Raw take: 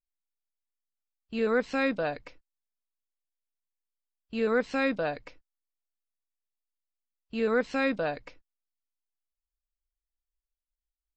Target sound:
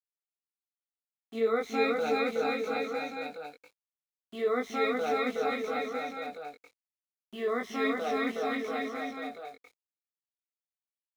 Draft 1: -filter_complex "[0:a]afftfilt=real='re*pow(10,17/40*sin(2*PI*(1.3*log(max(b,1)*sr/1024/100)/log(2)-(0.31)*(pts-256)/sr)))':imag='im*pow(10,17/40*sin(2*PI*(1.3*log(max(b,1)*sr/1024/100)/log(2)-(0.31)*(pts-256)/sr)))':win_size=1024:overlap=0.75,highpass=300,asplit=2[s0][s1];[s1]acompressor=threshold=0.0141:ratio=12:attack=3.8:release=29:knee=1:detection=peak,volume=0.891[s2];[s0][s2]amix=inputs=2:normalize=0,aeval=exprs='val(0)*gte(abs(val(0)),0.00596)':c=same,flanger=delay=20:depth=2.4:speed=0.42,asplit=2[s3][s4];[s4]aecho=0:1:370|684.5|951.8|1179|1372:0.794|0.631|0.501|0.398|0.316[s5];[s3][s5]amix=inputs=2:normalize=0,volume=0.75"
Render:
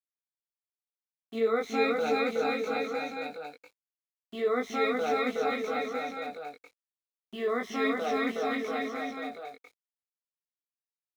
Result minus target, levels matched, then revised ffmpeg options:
compression: peak gain reduction -9.5 dB
-filter_complex "[0:a]afftfilt=real='re*pow(10,17/40*sin(2*PI*(1.3*log(max(b,1)*sr/1024/100)/log(2)-(0.31)*(pts-256)/sr)))':imag='im*pow(10,17/40*sin(2*PI*(1.3*log(max(b,1)*sr/1024/100)/log(2)-(0.31)*(pts-256)/sr)))':win_size=1024:overlap=0.75,highpass=300,asplit=2[s0][s1];[s1]acompressor=threshold=0.00422:ratio=12:attack=3.8:release=29:knee=1:detection=peak,volume=0.891[s2];[s0][s2]amix=inputs=2:normalize=0,aeval=exprs='val(0)*gte(abs(val(0)),0.00596)':c=same,flanger=delay=20:depth=2.4:speed=0.42,asplit=2[s3][s4];[s4]aecho=0:1:370|684.5|951.8|1179|1372:0.794|0.631|0.501|0.398|0.316[s5];[s3][s5]amix=inputs=2:normalize=0,volume=0.75"

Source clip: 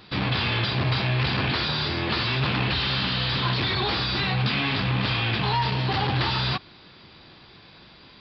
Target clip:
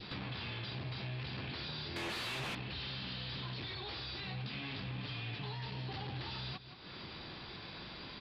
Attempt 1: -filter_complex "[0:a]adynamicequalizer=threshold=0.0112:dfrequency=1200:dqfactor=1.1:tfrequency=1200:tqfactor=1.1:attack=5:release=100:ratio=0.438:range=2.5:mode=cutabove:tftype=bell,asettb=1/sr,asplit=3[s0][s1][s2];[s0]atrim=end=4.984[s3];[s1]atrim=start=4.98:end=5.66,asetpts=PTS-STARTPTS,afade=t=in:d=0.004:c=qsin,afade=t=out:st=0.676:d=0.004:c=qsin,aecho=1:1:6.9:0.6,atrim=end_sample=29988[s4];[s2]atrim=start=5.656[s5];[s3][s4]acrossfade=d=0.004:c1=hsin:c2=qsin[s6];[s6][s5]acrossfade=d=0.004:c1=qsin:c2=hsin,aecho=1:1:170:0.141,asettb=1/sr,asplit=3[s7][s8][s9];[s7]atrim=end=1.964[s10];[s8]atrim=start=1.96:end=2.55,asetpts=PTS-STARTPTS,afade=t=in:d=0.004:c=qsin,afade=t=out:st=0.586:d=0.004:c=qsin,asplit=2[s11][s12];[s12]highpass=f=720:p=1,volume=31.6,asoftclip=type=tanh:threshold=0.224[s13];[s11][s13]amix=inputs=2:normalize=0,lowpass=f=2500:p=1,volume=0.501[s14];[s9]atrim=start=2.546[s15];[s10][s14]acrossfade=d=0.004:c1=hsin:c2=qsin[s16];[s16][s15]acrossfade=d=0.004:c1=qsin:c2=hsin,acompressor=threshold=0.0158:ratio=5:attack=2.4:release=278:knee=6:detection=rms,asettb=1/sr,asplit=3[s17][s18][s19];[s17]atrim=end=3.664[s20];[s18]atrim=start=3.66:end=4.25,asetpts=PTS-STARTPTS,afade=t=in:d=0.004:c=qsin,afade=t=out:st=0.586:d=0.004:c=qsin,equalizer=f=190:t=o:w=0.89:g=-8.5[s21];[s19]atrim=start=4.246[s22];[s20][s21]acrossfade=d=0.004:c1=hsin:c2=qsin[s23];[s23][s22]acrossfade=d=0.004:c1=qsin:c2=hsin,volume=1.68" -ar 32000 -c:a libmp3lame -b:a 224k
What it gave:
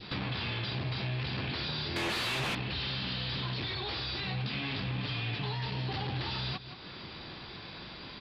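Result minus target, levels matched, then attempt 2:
compression: peak gain reduction -7 dB
-filter_complex "[0:a]adynamicequalizer=threshold=0.0112:dfrequency=1200:dqfactor=1.1:tfrequency=1200:tqfactor=1.1:attack=5:release=100:ratio=0.438:range=2.5:mode=cutabove:tftype=bell,asettb=1/sr,asplit=3[s0][s1][s2];[s0]atrim=end=4.984[s3];[s1]atrim=start=4.98:end=5.66,asetpts=PTS-STARTPTS,afade=t=in:d=0.004:c=qsin,afade=t=out:st=0.676:d=0.004:c=qsin,aecho=1:1:6.9:0.6,atrim=end_sample=29988[s4];[s2]atrim=start=5.656[s5];[s3][s4]acrossfade=d=0.004:c1=hsin:c2=qsin[s6];[s6][s5]acrossfade=d=0.004:c1=qsin:c2=hsin,aecho=1:1:170:0.141,asettb=1/sr,asplit=3[s7][s8][s9];[s7]atrim=end=1.964[s10];[s8]atrim=start=1.96:end=2.55,asetpts=PTS-STARTPTS,afade=t=in:d=0.004:c=qsin,afade=t=out:st=0.586:d=0.004:c=qsin,asplit=2[s11][s12];[s12]highpass=f=720:p=1,volume=31.6,asoftclip=type=tanh:threshold=0.224[s13];[s11][s13]amix=inputs=2:normalize=0,lowpass=f=2500:p=1,volume=0.501[s14];[s9]atrim=start=2.546[s15];[s10][s14]acrossfade=d=0.004:c1=hsin:c2=qsin[s16];[s16][s15]acrossfade=d=0.004:c1=qsin:c2=hsin,acompressor=threshold=0.00562:ratio=5:attack=2.4:release=278:knee=6:detection=rms,asettb=1/sr,asplit=3[s17][s18][s19];[s17]atrim=end=3.664[s20];[s18]atrim=start=3.66:end=4.25,asetpts=PTS-STARTPTS,afade=t=in:d=0.004:c=qsin,afade=t=out:st=0.586:d=0.004:c=qsin,equalizer=f=190:t=o:w=0.89:g=-8.5[s21];[s19]atrim=start=4.246[s22];[s20][s21]acrossfade=d=0.004:c1=hsin:c2=qsin[s23];[s23][s22]acrossfade=d=0.004:c1=qsin:c2=hsin,volume=1.68" -ar 32000 -c:a libmp3lame -b:a 224k

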